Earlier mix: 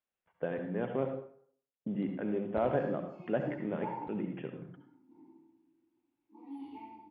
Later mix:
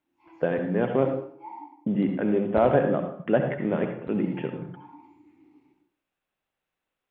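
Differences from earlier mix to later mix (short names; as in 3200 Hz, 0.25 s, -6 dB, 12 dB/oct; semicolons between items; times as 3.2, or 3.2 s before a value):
speech +10.0 dB; background: entry -2.40 s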